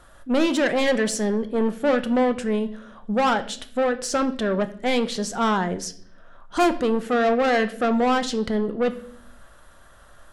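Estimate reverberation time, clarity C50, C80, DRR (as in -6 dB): 0.60 s, 15.5 dB, 18.5 dB, 9.5 dB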